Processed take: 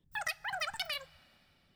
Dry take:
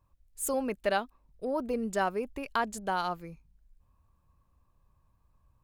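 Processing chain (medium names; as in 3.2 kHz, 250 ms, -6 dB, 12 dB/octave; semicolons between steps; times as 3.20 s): wide varispeed 3.21×; two-slope reverb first 0.22 s, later 3.1 s, from -18 dB, DRR 14.5 dB; trim -6 dB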